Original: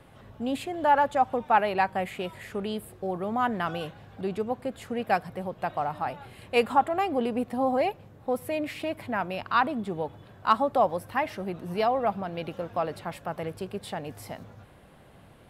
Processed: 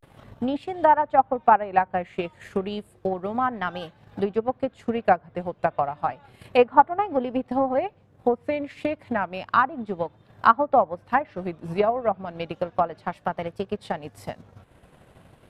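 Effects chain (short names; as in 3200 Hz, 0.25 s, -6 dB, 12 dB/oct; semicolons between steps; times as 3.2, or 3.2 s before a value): transient shaper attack +9 dB, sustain -8 dB; treble ducked by the level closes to 1500 Hz, closed at -17.5 dBFS; vibrato 0.32 Hz 85 cents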